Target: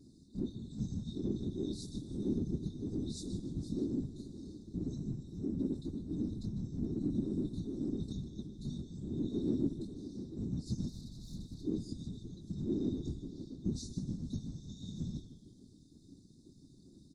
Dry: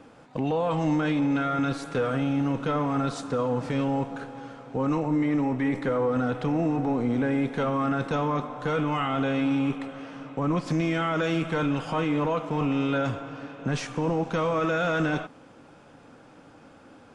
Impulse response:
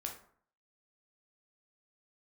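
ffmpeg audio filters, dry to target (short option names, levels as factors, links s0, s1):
-filter_complex "[0:a]flanger=delay=17:depth=6.2:speed=1.8,alimiter=level_in=1.19:limit=0.0631:level=0:latency=1:release=320,volume=0.841,asettb=1/sr,asplit=3[s0][s1][s2];[s0]atrim=end=10.884[s3];[s1]atrim=start=10.88:end=11.66,asetpts=PTS-STARTPTS,afade=t=in:d=0.004:c=qsin,afade=t=out:st=0.776:d=0.004:c=qsin,aeval=exprs='(tanh(100*val(0)+0.75)-tanh(0.75))/100':c=same[s4];[s2]atrim=start=11.656[s5];[s3][s4]acrossfade=d=0.004:c1=hsin:c2=qsin[s6];[s6][s5]acrossfade=d=0.004:c1=qsin:c2=hsin,asplit=2[s7][s8];[s8]adelay=157.4,volume=0.178,highshelf=f=4000:g=-3.54[s9];[s7][s9]amix=inputs=2:normalize=0,afftfilt=real='re*(1-between(b*sr/4096,290,3600))':imag='im*(1-between(b*sr/4096,290,3600))':win_size=4096:overlap=0.75,asplit=2[s10][s11];[s11]asplit=4[s12][s13][s14][s15];[s12]adelay=151,afreqshift=-120,volume=0.2[s16];[s13]adelay=302,afreqshift=-240,volume=0.0759[s17];[s14]adelay=453,afreqshift=-360,volume=0.0288[s18];[s15]adelay=604,afreqshift=-480,volume=0.011[s19];[s16][s17][s18][s19]amix=inputs=4:normalize=0[s20];[s10][s20]amix=inputs=2:normalize=0,afftfilt=real='hypot(re,im)*cos(2*PI*random(0))':imag='hypot(re,im)*sin(2*PI*random(1))':win_size=512:overlap=0.75,volume=2"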